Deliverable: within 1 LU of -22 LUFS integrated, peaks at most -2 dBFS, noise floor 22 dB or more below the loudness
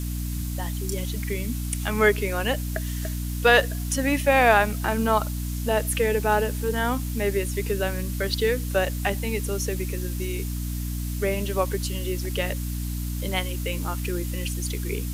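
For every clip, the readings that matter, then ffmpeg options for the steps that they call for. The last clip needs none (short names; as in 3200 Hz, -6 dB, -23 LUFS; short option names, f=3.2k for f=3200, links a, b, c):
hum 60 Hz; harmonics up to 300 Hz; hum level -27 dBFS; noise floor -29 dBFS; noise floor target -48 dBFS; loudness -25.5 LUFS; peak -4.0 dBFS; loudness target -22.0 LUFS
-> -af "bandreject=f=60:t=h:w=6,bandreject=f=120:t=h:w=6,bandreject=f=180:t=h:w=6,bandreject=f=240:t=h:w=6,bandreject=f=300:t=h:w=6"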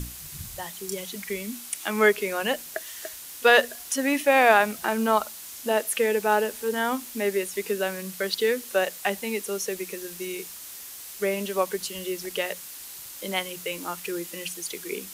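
hum none; noise floor -41 dBFS; noise floor target -48 dBFS
-> -af "afftdn=nr=7:nf=-41"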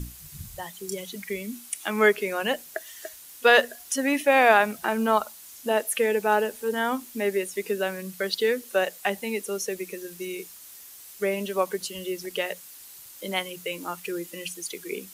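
noise floor -46 dBFS; noise floor target -48 dBFS
-> -af "afftdn=nr=6:nf=-46"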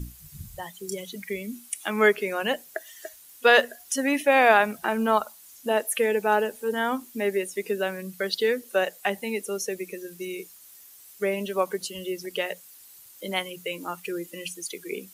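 noise floor -50 dBFS; loudness -26.0 LUFS; peak -5.0 dBFS; loudness target -22.0 LUFS
-> -af "volume=4dB,alimiter=limit=-2dB:level=0:latency=1"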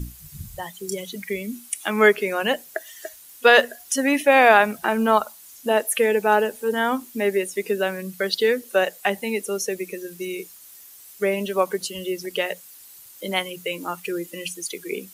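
loudness -22.0 LUFS; peak -2.0 dBFS; noise floor -46 dBFS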